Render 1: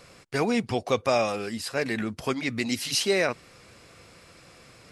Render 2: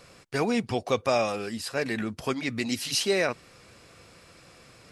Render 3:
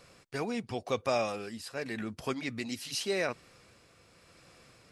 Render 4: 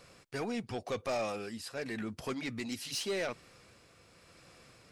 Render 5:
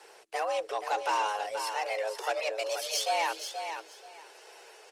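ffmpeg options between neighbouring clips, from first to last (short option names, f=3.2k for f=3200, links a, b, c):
-af "bandreject=f=2.1k:w=29,volume=-1dB"
-af "tremolo=f=0.88:d=0.36,volume=-5dB"
-af "asoftclip=type=tanh:threshold=-28.5dB"
-filter_complex "[0:a]afreqshift=320,asplit=2[a][b];[b]aecho=0:1:479|958|1437:0.398|0.0756|0.0144[c];[a][c]amix=inputs=2:normalize=0,volume=5.5dB" -ar 48000 -c:a libopus -b:a 20k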